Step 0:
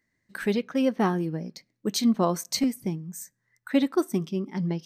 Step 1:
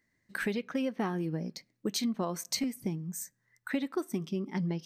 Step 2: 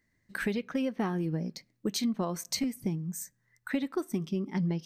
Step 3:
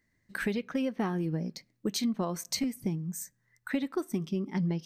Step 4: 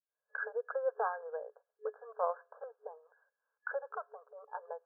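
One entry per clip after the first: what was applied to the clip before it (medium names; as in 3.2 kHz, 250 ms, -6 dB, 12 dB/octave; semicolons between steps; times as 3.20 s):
dynamic bell 2.3 kHz, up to +4 dB, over -46 dBFS, Q 1.6; compression 6:1, threshold -29 dBFS, peak gain reduction 12.5 dB
bass shelf 110 Hz +9.5 dB
no audible change
fade-in on the opening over 0.69 s; transient shaper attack -1 dB, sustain -5 dB; FFT band-pass 420–1700 Hz; trim +3.5 dB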